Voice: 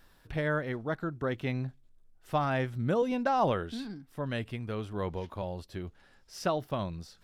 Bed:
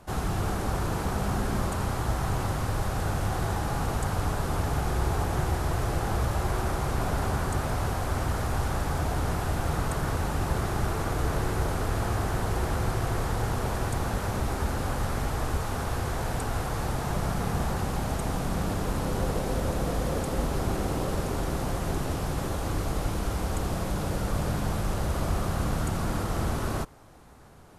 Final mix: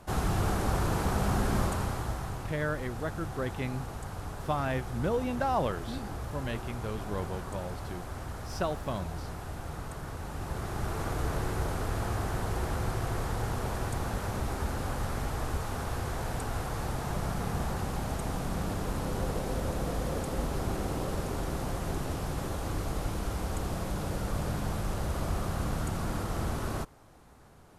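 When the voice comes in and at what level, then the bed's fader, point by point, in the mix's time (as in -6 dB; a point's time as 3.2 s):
2.15 s, -2.0 dB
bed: 1.62 s 0 dB
2.5 s -11 dB
10.16 s -11 dB
11.04 s -4 dB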